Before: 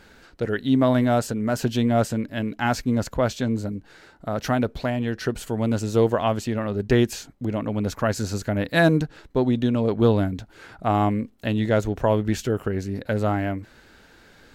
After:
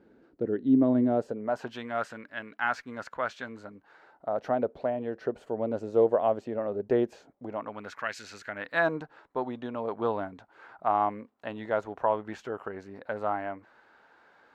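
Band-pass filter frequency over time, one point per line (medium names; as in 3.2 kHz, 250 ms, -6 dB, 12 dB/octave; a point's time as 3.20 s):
band-pass filter, Q 1.7
1.05 s 320 Hz
1.82 s 1.4 kHz
3.50 s 1.4 kHz
4.55 s 570 Hz
7.30 s 570 Hz
8.18 s 2.5 kHz
8.94 s 960 Hz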